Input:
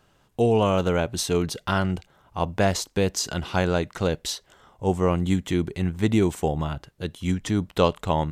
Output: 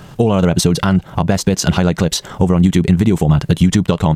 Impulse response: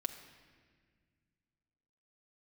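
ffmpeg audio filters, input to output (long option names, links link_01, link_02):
-af "acompressor=threshold=-35dB:ratio=12,atempo=2,equalizer=frequency=160:width_type=o:width=0.96:gain=9.5,alimiter=level_in=23.5dB:limit=-1dB:release=50:level=0:latency=1,volume=-1dB"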